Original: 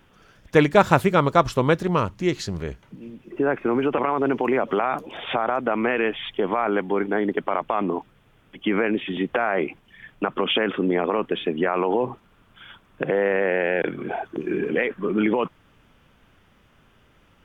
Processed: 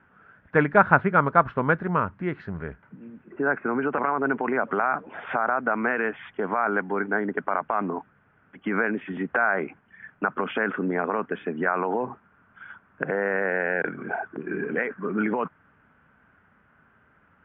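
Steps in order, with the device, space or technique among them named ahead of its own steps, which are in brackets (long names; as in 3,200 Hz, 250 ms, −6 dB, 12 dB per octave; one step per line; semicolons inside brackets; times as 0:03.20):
bass cabinet (loudspeaker in its box 87–2,000 Hz, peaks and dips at 120 Hz −5 dB, 340 Hz −6 dB, 520 Hz −4 dB, 1,500 Hz +9 dB)
level −2 dB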